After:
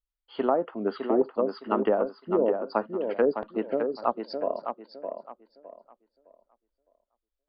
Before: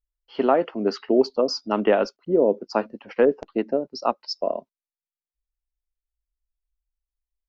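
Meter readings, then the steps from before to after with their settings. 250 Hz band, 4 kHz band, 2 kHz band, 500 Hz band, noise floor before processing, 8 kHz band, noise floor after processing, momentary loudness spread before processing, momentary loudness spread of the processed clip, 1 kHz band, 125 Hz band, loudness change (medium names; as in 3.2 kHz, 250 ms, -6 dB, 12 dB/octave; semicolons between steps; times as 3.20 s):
-4.5 dB, -13.5 dB, -6.5 dB, -4.0 dB, under -85 dBFS, no reading, under -85 dBFS, 8 LU, 13 LU, -3.0 dB, -5.0 dB, -4.5 dB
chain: rippled Chebyshev low-pass 4.8 kHz, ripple 6 dB; low-pass that closes with the level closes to 860 Hz, closed at -20 dBFS; tape echo 611 ms, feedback 28%, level -5.5 dB, low-pass 3.6 kHz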